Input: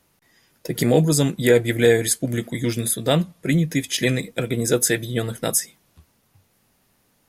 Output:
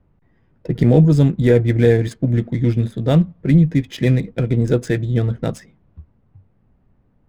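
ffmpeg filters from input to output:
ffmpeg -i in.wav -af "aemphasis=mode=reproduction:type=riaa,adynamicsmooth=sensitivity=8:basefreq=2000,volume=-2dB" out.wav

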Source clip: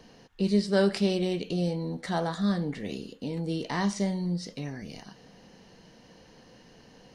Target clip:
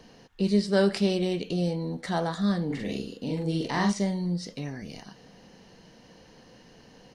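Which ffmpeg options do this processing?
ffmpeg -i in.wav -filter_complex "[0:a]asplit=3[link_01][link_02][link_03];[link_01]afade=type=out:start_time=2.69:duration=0.02[link_04];[link_02]asplit=2[link_05][link_06];[link_06]adelay=44,volume=-2dB[link_07];[link_05][link_07]amix=inputs=2:normalize=0,afade=type=in:start_time=2.69:duration=0.02,afade=type=out:start_time=3.91:duration=0.02[link_08];[link_03]afade=type=in:start_time=3.91:duration=0.02[link_09];[link_04][link_08][link_09]amix=inputs=3:normalize=0,volume=1dB" out.wav

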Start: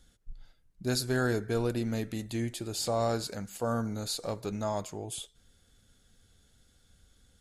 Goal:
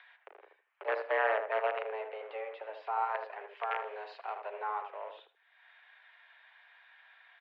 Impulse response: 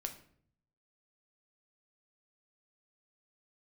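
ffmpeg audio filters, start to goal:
-filter_complex "[0:a]acrossover=split=720|1100[link_01][link_02][link_03];[link_01]acrusher=bits=5:dc=4:mix=0:aa=0.000001[link_04];[link_04][link_02][link_03]amix=inputs=3:normalize=0,acompressor=mode=upward:threshold=-33dB:ratio=2.5,highpass=frequency=230:width_type=q:width=0.5412,highpass=frequency=230:width_type=q:width=1.307,lowpass=frequency=2500:width_type=q:width=0.5176,lowpass=frequency=2500:width_type=q:width=0.7071,lowpass=frequency=2500:width_type=q:width=1.932,afreqshift=210,asettb=1/sr,asplit=3[link_05][link_06][link_07];[link_05]atrim=end=3.574[link_08];[link_06]atrim=start=3.57:end=4.4,asetpts=PTS-STARTPTS,afade=type=in:duration=0.004:curve=qsin,afade=type=out:start_time=0.826:duration=0.004:curve=qsin,aemphasis=mode=production:type=75fm[link_09];[link_07]atrim=start=4.396[link_10];[link_08][link_09]acrossfade=duration=0.004:curve1=hsin:curve2=qsin[link_11];[link_11][link_10]acrossfade=duration=0.004:curve1=qsin:curve2=hsin,asplit=2[link_12][link_13];[link_13]adelay=78,lowpass=frequency=950:poles=1,volume=-4dB,asplit=2[link_14][link_15];[link_15]adelay=78,lowpass=frequency=950:poles=1,volume=0.23,asplit=2[link_16][link_17];[link_17]adelay=78,lowpass=frequency=950:poles=1,volume=0.23[link_18];[link_12][link_14][link_16][link_18]amix=inputs=4:normalize=0,volume=-1.5dB"

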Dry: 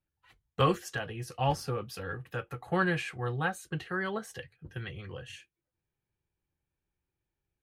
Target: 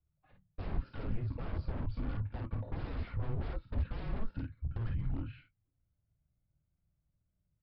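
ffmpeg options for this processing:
ffmpeg -i in.wav -af "aecho=1:1:26|50:0.299|0.562,alimiter=limit=-24dB:level=0:latency=1:release=57,aresample=11025,aeval=exprs='0.0158*(abs(mod(val(0)/0.0158+3,4)-2)-1)':channel_layout=same,aresample=44100,bandpass=frequency=210:width_type=q:width=2.5:csg=0,afreqshift=-230,volume=17dB" out.wav

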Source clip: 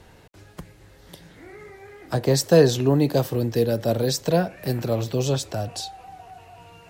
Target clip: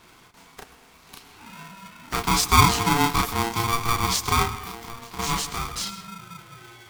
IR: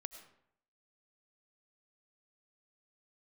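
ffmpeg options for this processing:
-filter_complex "[0:a]highpass=frequency=430:poles=1,asettb=1/sr,asplit=3[link_01][link_02][link_03];[link_01]atrim=end=4.524[link_04];[link_02]atrim=start=4.52:end=5.19,asetpts=PTS-STARTPTS,afade=type=in:duration=0.004:curve=qsin,afade=type=out:start_time=0.666:duration=0.004:curve=qsin,acompressor=threshold=-37dB:ratio=10[link_05];[link_03]atrim=start=5.186[link_06];[link_04][link_05]acrossfade=duration=0.004:curve1=hsin:curve2=qsin[link_07];[link_07][link_06]acrossfade=duration=0.004:curve1=qsin:curve2=hsin,asplit=2[link_08][link_09];[1:a]atrim=start_sample=2205,adelay=33[link_10];[link_09][link_10]afir=irnorm=-1:irlink=0,volume=3.5dB[link_11];[link_08][link_11]amix=inputs=2:normalize=0,aeval=exprs='val(0)*sgn(sin(2*PI*580*n/s))':channel_layout=same"

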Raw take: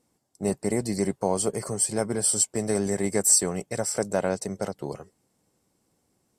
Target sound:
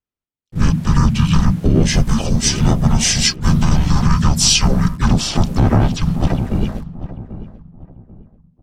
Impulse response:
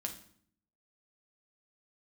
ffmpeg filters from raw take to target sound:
-filter_complex "[0:a]agate=range=-33dB:threshold=-39dB:ratio=3:detection=peak,highshelf=frequency=5100:width_type=q:width=1.5:gain=-10.5,bandreject=frequency=50:width_type=h:width=6,bandreject=frequency=100:width_type=h:width=6,bandreject=frequency=150:width_type=h:width=6,bandreject=frequency=200:width_type=h:width=6,bandreject=frequency=250:width_type=h:width=6,bandreject=frequency=300:width_type=h:width=6,bandreject=frequency=350:width_type=h:width=6,acrossover=split=320|3900[link_01][link_02][link_03];[link_01]aeval=exprs='val(0)*gte(abs(val(0)),0.00355)':channel_layout=same[link_04];[link_04][link_02][link_03]amix=inputs=3:normalize=0,asplit=4[link_05][link_06][link_07][link_08];[link_06]asetrate=37084,aresample=44100,atempo=1.18921,volume=-3dB[link_09];[link_07]asetrate=52444,aresample=44100,atempo=0.840896,volume=-16dB[link_10];[link_08]asetrate=58866,aresample=44100,atempo=0.749154,volume=-11dB[link_11];[link_05][link_09][link_10][link_11]amix=inputs=4:normalize=0,afreqshift=-410,asplit=2[link_12][link_13];[link_13]adelay=584,lowpass=frequency=1300:poles=1,volume=-13.5dB,asplit=2[link_14][link_15];[link_15]adelay=584,lowpass=frequency=1300:poles=1,volume=0.32,asplit=2[link_16][link_17];[link_17]adelay=584,lowpass=frequency=1300:poles=1,volume=0.32[link_18];[link_14][link_16][link_18]amix=inputs=3:normalize=0[link_19];[link_12][link_19]amix=inputs=2:normalize=0,asetrate=32667,aresample=44100,alimiter=level_in=17dB:limit=-1dB:release=50:level=0:latency=1,adynamicequalizer=threshold=0.0316:dfrequency=7100:dqfactor=0.7:tfrequency=7100:tqfactor=0.7:attack=5:release=100:ratio=0.375:range=4:mode=boostabove:tftype=highshelf,volume=-2.5dB"

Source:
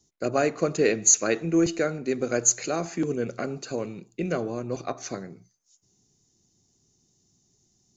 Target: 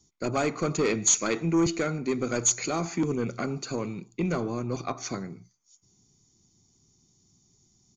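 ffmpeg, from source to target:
ffmpeg -i in.wav -af "aresample=16000,asoftclip=type=tanh:threshold=-19dB,aresample=44100,aecho=1:1:0.9:0.42,volume=1.5dB" out.wav

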